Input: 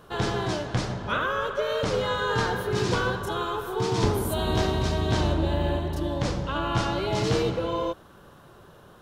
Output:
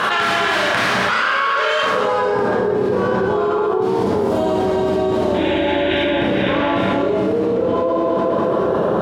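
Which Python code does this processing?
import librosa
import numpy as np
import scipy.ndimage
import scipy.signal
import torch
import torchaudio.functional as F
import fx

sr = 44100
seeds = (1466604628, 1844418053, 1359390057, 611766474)

y = fx.tracing_dist(x, sr, depth_ms=0.28)
y = fx.spec_paint(y, sr, seeds[0], shape='noise', start_s=5.34, length_s=1.53, low_hz=1400.0, high_hz=3900.0, level_db=-28.0)
y = fx.high_shelf(y, sr, hz=2400.0, db=8.5, at=(3.81, 6.05))
y = fx.echo_feedback(y, sr, ms=209, feedback_pct=56, wet_db=-12)
y = fx.rev_schroeder(y, sr, rt60_s=0.79, comb_ms=28, drr_db=-5.5)
y = fx.filter_sweep_bandpass(y, sr, from_hz=1900.0, to_hz=460.0, start_s=1.8, end_s=2.4, q=1.2)
y = fx.peak_eq(y, sr, hz=200.0, db=4.0, octaves=0.63)
y = fx.env_flatten(y, sr, amount_pct=100)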